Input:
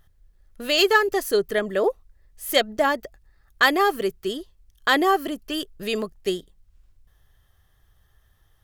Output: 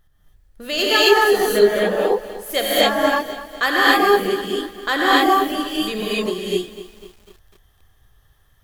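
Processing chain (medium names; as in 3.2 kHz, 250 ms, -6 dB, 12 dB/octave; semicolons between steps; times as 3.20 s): gated-style reverb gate 300 ms rising, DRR -7.5 dB; bit-crushed delay 249 ms, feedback 55%, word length 6-bit, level -14.5 dB; trim -3 dB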